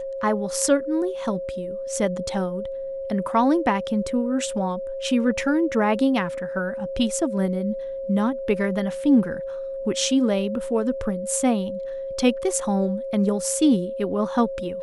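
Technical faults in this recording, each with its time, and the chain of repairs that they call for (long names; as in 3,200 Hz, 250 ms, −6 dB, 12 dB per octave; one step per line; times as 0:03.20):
whistle 540 Hz −28 dBFS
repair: notch filter 540 Hz, Q 30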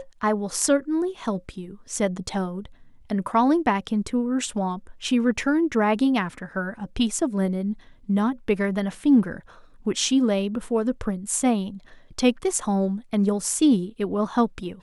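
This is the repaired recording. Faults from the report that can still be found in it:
none of them is left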